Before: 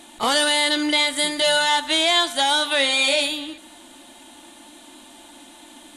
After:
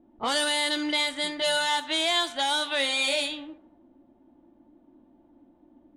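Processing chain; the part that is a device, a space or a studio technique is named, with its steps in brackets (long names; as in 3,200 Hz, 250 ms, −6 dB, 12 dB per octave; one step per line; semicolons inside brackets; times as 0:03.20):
cassette deck with a dynamic noise filter (white noise bed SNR 28 dB; low-pass that shuts in the quiet parts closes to 330 Hz, open at −15 dBFS)
0:01.51–0:02.05: high-pass filter 79 Hz
level −6.5 dB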